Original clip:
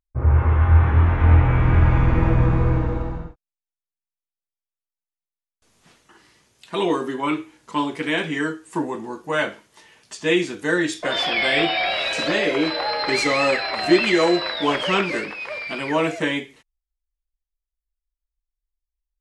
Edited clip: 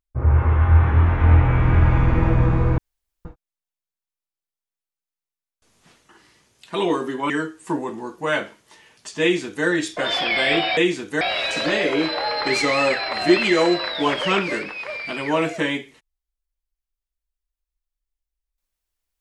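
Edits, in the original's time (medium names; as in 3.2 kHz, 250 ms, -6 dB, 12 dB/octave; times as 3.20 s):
2.78–3.25 s: room tone
7.30–8.36 s: delete
10.28–10.72 s: copy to 11.83 s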